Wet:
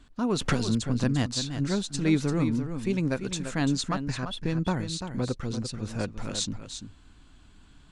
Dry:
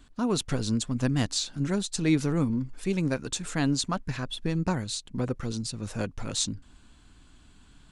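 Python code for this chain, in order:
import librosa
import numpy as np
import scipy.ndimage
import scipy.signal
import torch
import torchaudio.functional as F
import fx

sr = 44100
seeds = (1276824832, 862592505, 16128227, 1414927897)

y = fx.high_shelf(x, sr, hz=9200.0, db=-10.0)
y = y + 10.0 ** (-9.0 / 20.0) * np.pad(y, (int(342 * sr / 1000.0), 0))[:len(y)]
y = fx.band_squash(y, sr, depth_pct=100, at=(0.41, 1.04))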